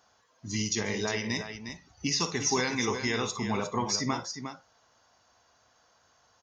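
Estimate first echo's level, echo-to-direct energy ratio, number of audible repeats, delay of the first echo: -11.5 dB, -7.0 dB, 2, 54 ms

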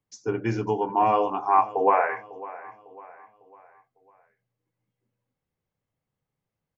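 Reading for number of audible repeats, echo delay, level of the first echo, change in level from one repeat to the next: 3, 0.551 s, -18.0 dB, -7.5 dB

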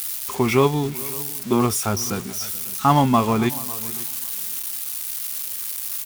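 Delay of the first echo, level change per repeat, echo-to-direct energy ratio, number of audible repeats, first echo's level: 0.432 s, no steady repeat, -17.5 dB, 2, -20.5 dB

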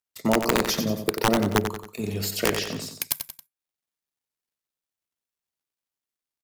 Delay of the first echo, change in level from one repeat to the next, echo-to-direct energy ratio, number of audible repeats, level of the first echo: 91 ms, -7.0 dB, -7.0 dB, 3, -8.0 dB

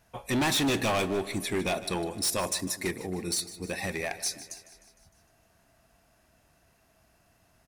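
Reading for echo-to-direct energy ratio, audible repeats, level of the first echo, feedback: -13.5 dB, 5, -15.5 dB, 58%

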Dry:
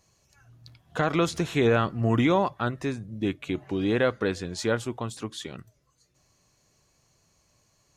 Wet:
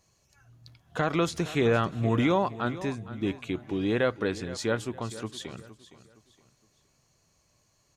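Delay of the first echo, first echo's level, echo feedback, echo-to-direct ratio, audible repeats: 0.465 s, -15.5 dB, 33%, -15.0 dB, 3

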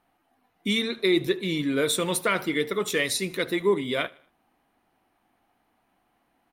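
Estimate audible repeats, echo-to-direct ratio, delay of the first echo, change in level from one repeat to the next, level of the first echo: 2, -22.0 dB, 77 ms, -7.5 dB, -23.0 dB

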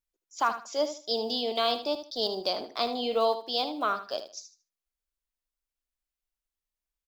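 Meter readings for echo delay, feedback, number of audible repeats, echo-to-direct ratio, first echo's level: 77 ms, 23%, 2, -11.0 dB, -11.0 dB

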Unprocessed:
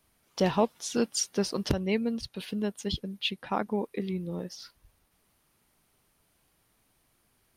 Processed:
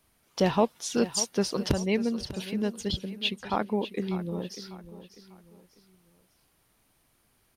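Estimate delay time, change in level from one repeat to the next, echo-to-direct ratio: 0.596 s, -9.0 dB, -13.5 dB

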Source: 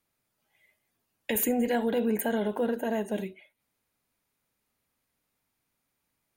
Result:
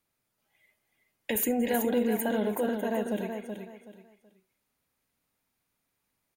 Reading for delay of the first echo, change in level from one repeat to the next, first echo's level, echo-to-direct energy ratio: 0.376 s, -11.5 dB, -6.5 dB, -6.0 dB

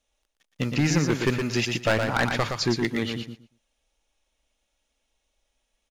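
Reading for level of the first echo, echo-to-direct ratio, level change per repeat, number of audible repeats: -5.5 dB, -5.5 dB, -15.0 dB, 2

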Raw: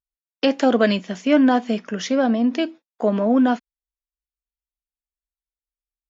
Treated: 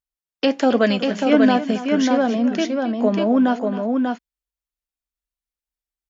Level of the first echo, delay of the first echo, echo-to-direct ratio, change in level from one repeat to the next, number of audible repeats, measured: -14.0 dB, 0.271 s, -3.5 dB, no steady repeat, 2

